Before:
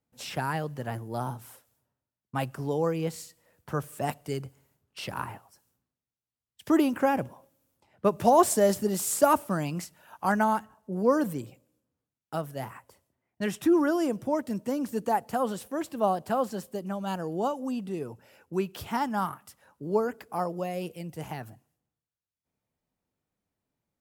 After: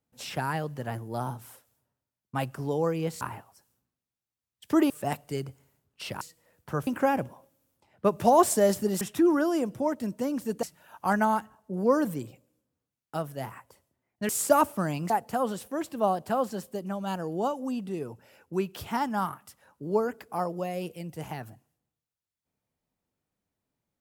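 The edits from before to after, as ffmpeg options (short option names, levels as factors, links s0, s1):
-filter_complex "[0:a]asplit=9[s0][s1][s2][s3][s4][s5][s6][s7][s8];[s0]atrim=end=3.212[s9];[s1]atrim=start=5.178:end=6.872[s10];[s2]atrim=start=3.868:end=5.182[s11];[s3]atrim=start=3.208:end=3.872[s12];[s4]atrim=start=6.868:end=9.012[s13];[s5]atrim=start=13.478:end=15.102[s14];[s6]atrim=start=9.818:end=13.482[s15];[s7]atrim=start=9.008:end=9.822[s16];[s8]atrim=start=15.098[s17];[s9][s10]acrossfade=d=0.004:c1=hsin:c2=hsin[s18];[s18][s11]acrossfade=d=0.004:c1=hsin:c2=hsin[s19];[s19][s12]acrossfade=d=0.004:c1=hsin:c2=hsin[s20];[s20][s13]acrossfade=d=0.004:c1=hsin:c2=hsin[s21];[s21][s14]acrossfade=d=0.004:c1=hsin:c2=hsin[s22];[s22][s15]acrossfade=d=0.004:c1=hsin:c2=hsin[s23];[s23][s16]acrossfade=d=0.004:c1=hsin:c2=hsin[s24];[s24][s17]acrossfade=d=0.004:c1=hsin:c2=hsin"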